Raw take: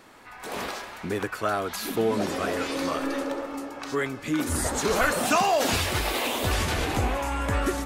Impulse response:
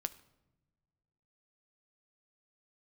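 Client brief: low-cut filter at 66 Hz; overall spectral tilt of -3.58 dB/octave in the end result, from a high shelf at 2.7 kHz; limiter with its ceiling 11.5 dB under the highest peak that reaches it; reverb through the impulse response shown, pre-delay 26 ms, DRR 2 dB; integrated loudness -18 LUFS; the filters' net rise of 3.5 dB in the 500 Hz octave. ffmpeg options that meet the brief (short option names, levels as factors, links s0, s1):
-filter_complex "[0:a]highpass=66,equalizer=f=500:t=o:g=4,highshelf=f=2700:g=7,alimiter=limit=0.112:level=0:latency=1,asplit=2[s0][s1];[1:a]atrim=start_sample=2205,adelay=26[s2];[s1][s2]afir=irnorm=-1:irlink=0,volume=0.841[s3];[s0][s3]amix=inputs=2:normalize=0,volume=2.51"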